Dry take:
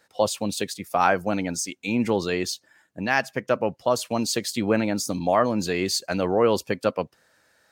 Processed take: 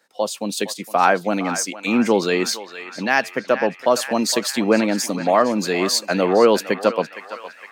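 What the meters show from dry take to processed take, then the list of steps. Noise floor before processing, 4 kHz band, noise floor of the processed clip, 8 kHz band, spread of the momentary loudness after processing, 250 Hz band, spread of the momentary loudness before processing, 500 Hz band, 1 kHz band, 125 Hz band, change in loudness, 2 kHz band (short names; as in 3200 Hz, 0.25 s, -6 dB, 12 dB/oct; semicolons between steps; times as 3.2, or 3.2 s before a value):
-64 dBFS, +5.5 dB, -45 dBFS, +5.0 dB, 9 LU, +5.0 dB, 7 LU, +5.0 dB, +5.0 dB, 0.0 dB, +5.0 dB, +5.5 dB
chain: AGC gain up to 10 dB; HPF 180 Hz 24 dB/oct; narrowing echo 0.462 s, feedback 68%, band-pass 1800 Hz, level -9.5 dB; gain -1 dB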